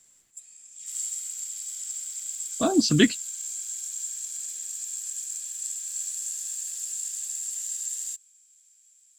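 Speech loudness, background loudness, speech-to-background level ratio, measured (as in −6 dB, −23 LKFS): −22.5 LKFS, −31.0 LKFS, 8.5 dB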